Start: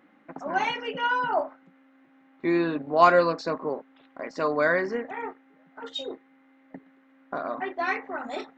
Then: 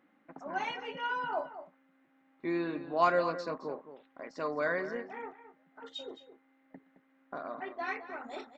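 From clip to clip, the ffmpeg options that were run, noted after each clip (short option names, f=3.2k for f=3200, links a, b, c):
-filter_complex "[0:a]asplit=2[a][b];[b]adelay=215.7,volume=-12dB,highshelf=f=4k:g=-4.85[c];[a][c]amix=inputs=2:normalize=0,volume=-9dB"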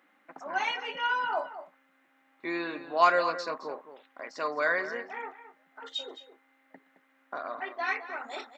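-af "highpass=f=1.1k:p=1,volume=8.5dB"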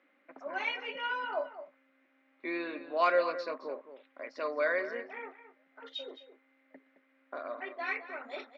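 -af "highpass=220,equalizer=f=260:t=q:w=4:g=8,equalizer=f=390:t=q:w=4:g=4,equalizer=f=570:t=q:w=4:g=9,equalizer=f=820:t=q:w=4:g=-5,equalizer=f=2.3k:t=q:w=4:g=6,lowpass=f=5.1k:w=0.5412,lowpass=f=5.1k:w=1.3066,volume=-6dB"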